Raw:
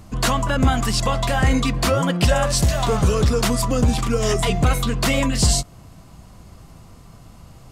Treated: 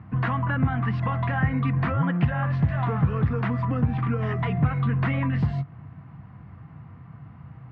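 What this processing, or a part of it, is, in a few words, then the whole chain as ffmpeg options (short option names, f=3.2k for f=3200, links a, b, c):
bass amplifier: -filter_complex "[0:a]acompressor=threshold=-19dB:ratio=6,highpass=f=79:w=0.5412,highpass=f=79:w=1.3066,equalizer=f=93:t=q:w=4:g=5,equalizer=f=140:t=q:w=4:g=9,equalizer=f=390:t=q:w=4:g=-8,equalizer=f=580:t=q:w=4:g=-10,equalizer=f=1.8k:t=q:w=4:g=4,lowpass=f=2.1k:w=0.5412,lowpass=f=2.1k:w=1.3066,asettb=1/sr,asplit=3[a][b][c];[a]atrim=end=1.964[d];[b]atrim=start=1.96:end=2.64,asetpts=PTS-STARTPTS,afade=t=in:d=0.004:c=qsin,afade=t=out:st=0.676:d=0.004:c=qsin,lowpass=5.6k[e];[c]atrim=start=2.636[f];[d][e]acrossfade=d=0.004:c1=hsin:c2=qsin[g];[g][f]acrossfade=d=0.004:c1=qsin:c2=hsin,volume=-1.5dB"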